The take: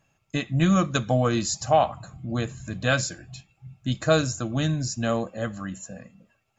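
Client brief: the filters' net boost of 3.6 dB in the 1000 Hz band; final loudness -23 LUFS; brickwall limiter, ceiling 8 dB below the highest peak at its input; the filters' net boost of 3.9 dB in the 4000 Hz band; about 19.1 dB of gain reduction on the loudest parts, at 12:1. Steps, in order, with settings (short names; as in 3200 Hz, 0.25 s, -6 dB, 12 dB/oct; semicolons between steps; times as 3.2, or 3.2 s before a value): bell 1000 Hz +5 dB; bell 4000 Hz +4.5 dB; compressor 12:1, threshold -31 dBFS; gain +15 dB; limiter -12 dBFS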